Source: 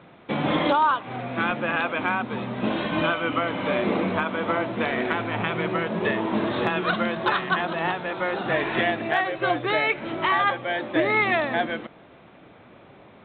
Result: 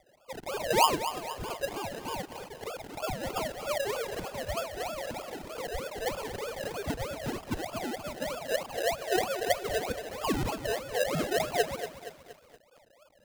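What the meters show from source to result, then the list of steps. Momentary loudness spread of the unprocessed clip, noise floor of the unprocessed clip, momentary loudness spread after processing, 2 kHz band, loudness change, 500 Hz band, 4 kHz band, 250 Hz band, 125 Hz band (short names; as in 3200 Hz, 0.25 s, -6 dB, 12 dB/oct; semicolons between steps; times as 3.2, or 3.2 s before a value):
6 LU, -50 dBFS, 11 LU, -13.0 dB, -8.0 dB, -5.5 dB, -4.5 dB, -12.0 dB, -8.0 dB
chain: sine-wave speech; LPF 1200 Hz 12 dB/oct; decimation with a swept rate 31×, swing 60% 3.2 Hz; lo-fi delay 0.235 s, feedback 55%, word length 7-bit, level -10.5 dB; gain -6 dB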